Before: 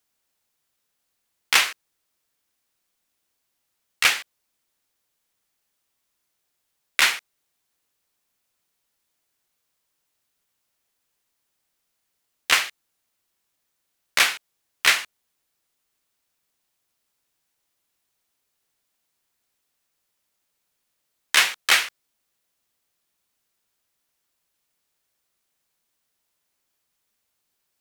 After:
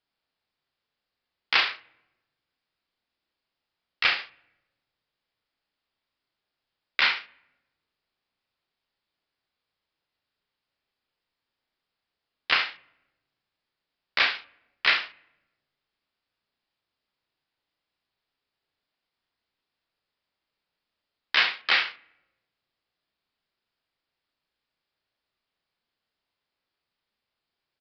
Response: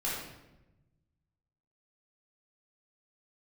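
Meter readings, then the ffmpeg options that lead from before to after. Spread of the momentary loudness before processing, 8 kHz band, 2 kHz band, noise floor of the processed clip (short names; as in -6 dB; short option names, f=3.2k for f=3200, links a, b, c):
14 LU, under -25 dB, -3.0 dB, under -85 dBFS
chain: -filter_complex "[0:a]aecho=1:1:34|71:0.501|0.251,asplit=2[a][b];[1:a]atrim=start_sample=2205,lowpass=3.2k[c];[b][c]afir=irnorm=-1:irlink=0,volume=-26dB[d];[a][d]amix=inputs=2:normalize=0,aresample=11025,aresample=44100,volume=-4.5dB"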